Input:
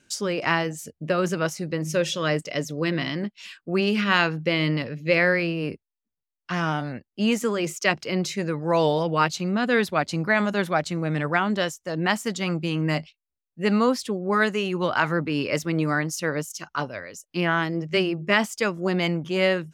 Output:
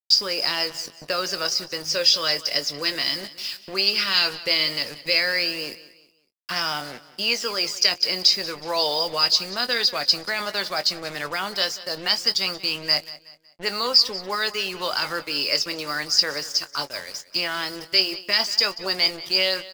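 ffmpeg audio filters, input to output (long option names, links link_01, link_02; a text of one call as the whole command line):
ffmpeg -i in.wav -filter_complex "[0:a]lowshelf=frequency=230:gain=-11,acrossover=split=430|2900[link_01][link_02][link_03];[link_01]acompressor=threshold=-41dB:ratio=6[link_04];[link_02]alimiter=limit=-19.5dB:level=0:latency=1:release=14[link_05];[link_03]aphaser=in_gain=1:out_gain=1:delay=4.4:decay=0.65:speed=0.15:type=sinusoidal[link_06];[link_04][link_05][link_06]amix=inputs=3:normalize=0,lowpass=frequency=4900:width_type=q:width=15,acrusher=bits=5:mix=0:aa=0.5,asplit=2[link_07][link_08];[link_08]adelay=21,volume=-12dB[link_09];[link_07][link_09]amix=inputs=2:normalize=0,aecho=1:1:185|370|555:0.133|0.0493|0.0183" out.wav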